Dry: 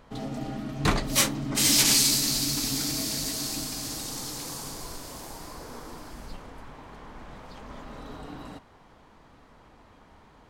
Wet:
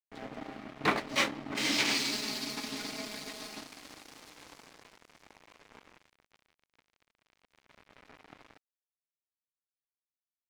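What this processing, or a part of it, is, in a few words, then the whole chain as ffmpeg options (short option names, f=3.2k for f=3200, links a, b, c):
pocket radio on a weak battery: -filter_complex "[0:a]highpass=280,lowpass=3.2k,aeval=exprs='sgn(val(0))*max(abs(val(0))-0.01,0)':c=same,equalizer=f=2.2k:t=o:w=0.41:g=4,asettb=1/sr,asplit=3[a][b][c];[a]atrim=end=2.134[d];[b]atrim=start=2.13:end=3.61,asetpts=PTS-STARTPTS,afade=t=in:d=0.004:c=qsin,afade=t=out:st=1.476:d=0.004:c=qsin,aecho=1:1:4.8:0.65,atrim=end_sample=65268[e];[c]atrim=start=3.606[f];[d][e]acrossfade=d=0.004:c1=hsin:c2=qsin[g];[g][f]acrossfade=d=0.004:c1=qsin:c2=hsin"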